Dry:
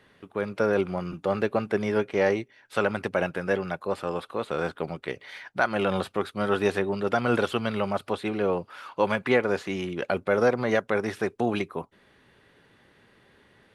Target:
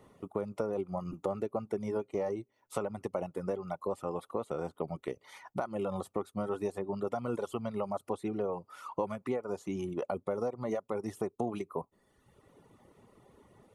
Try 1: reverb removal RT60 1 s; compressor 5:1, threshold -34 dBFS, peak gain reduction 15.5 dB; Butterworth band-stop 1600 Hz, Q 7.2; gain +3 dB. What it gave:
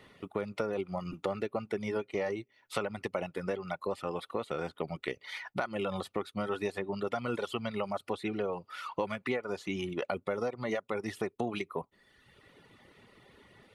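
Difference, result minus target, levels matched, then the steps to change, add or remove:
2000 Hz band +10.0 dB
add after Butterworth band-stop: band shelf 2700 Hz -12.5 dB 2 oct

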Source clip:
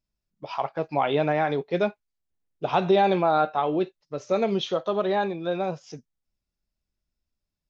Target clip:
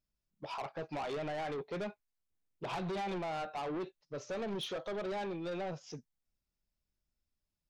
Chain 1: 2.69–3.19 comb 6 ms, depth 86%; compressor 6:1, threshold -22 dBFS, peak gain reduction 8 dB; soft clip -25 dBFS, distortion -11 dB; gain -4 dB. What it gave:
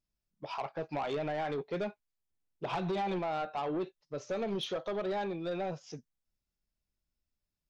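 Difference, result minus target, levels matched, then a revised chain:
soft clip: distortion -4 dB
2.69–3.19 comb 6 ms, depth 86%; compressor 6:1, threshold -22 dBFS, peak gain reduction 8 dB; soft clip -31 dBFS, distortion -7 dB; gain -4 dB

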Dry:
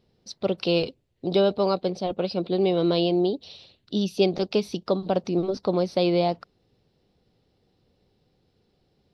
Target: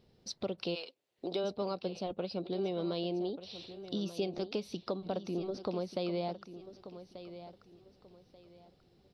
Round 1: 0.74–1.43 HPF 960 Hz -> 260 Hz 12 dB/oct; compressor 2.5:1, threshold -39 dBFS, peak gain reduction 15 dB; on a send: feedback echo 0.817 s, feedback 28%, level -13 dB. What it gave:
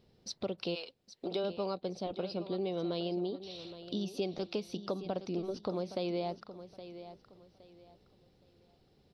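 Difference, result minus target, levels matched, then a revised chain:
echo 0.369 s early
0.74–1.43 HPF 960 Hz -> 260 Hz 12 dB/oct; compressor 2.5:1, threshold -39 dBFS, peak gain reduction 15 dB; on a send: feedback echo 1.186 s, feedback 28%, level -13 dB

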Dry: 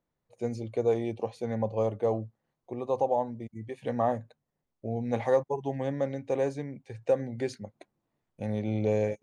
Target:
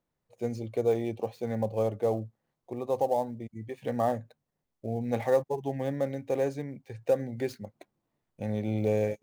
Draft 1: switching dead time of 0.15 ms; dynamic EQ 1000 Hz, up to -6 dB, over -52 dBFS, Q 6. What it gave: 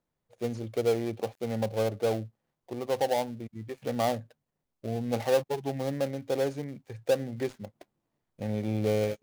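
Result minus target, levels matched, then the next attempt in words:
switching dead time: distortion +15 dB
switching dead time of 0.039 ms; dynamic EQ 1000 Hz, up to -6 dB, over -52 dBFS, Q 6

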